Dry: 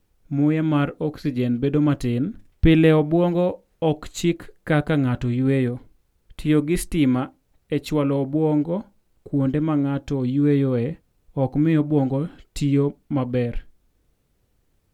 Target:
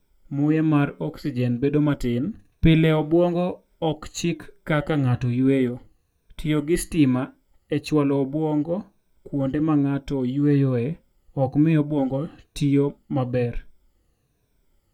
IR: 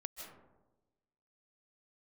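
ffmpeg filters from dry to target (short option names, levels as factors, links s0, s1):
-af "afftfilt=real='re*pow(10,11/40*sin(2*PI*(1.6*log(max(b,1)*sr/1024/100)/log(2)-(-1.1)*(pts-256)/sr)))':imag='im*pow(10,11/40*sin(2*PI*(1.6*log(max(b,1)*sr/1024/100)/log(2)-(-1.1)*(pts-256)/sr)))':win_size=1024:overlap=0.75,flanger=delay=1.9:depth=6.3:regen=-84:speed=0.51:shape=triangular,volume=1.33"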